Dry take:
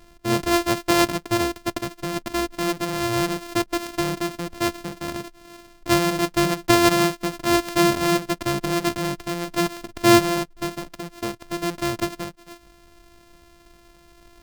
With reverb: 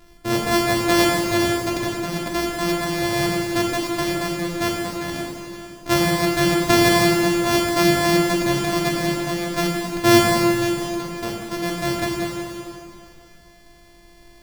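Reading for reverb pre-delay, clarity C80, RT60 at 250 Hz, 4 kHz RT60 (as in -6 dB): 6 ms, 1.5 dB, 2.6 s, 2.4 s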